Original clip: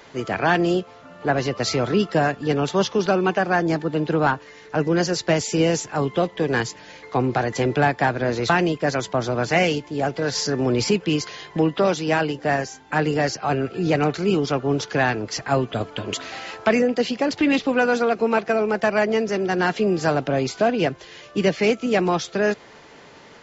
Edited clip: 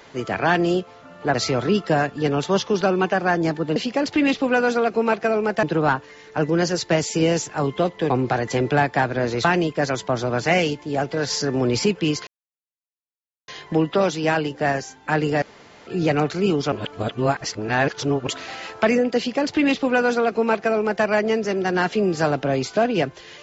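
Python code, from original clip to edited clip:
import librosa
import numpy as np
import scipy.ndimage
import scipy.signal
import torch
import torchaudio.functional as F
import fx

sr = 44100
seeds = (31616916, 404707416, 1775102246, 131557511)

y = fx.edit(x, sr, fx.cut(start_s=1.34, length_s=0.25),
    fx.cut(start_s=6.48, length_s=0.67),
    fx.insert_silence(at_s=11.32, length_s=1.21),
    fx.room_tone_fill(start_s=13.26, length_s=0.45),
    fx.reverse_span(start_s=14.56, length_s=1.55),
    fx.duplicate(start_s=17.01, length_s=1.87, to_s=4.01), tone=tone)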